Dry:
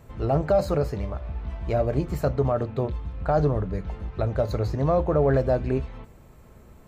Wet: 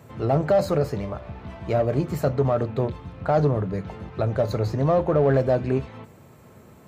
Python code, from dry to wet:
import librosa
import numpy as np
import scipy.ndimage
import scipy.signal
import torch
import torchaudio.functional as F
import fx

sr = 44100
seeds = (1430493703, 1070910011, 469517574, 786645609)

p1 = scipy.signal.sosfilt(scipy.signal.butter(4, 94.0, 'highpass', fs=sr, output='sos'), x)
p2 = 10.0 ** (-25.5 / 20.0) * np.tanh(p1 / 10.0 ** (-25.5 / 20.0))
y = p1 + (p2 * librosa.db_to_amplitude(-5.0))